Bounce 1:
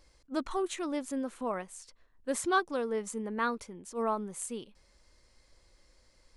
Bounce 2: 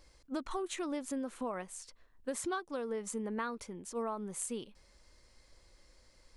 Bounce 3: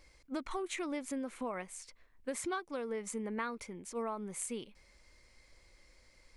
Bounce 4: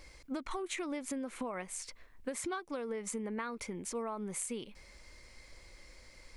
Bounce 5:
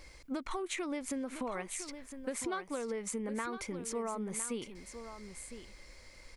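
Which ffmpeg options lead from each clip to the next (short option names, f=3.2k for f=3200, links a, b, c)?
-af "acompressor=threshold=-34dB:ratio=16,volume=1dB"
-af "equalizer=f=2.2k:w=4.2:g=9.5,volume=-1dB"
-af "acompressor=threshold=-44dB:ratio=4,volume=7.5dB"
-af "aecho=1:1:1008:0.299,volume=1dB"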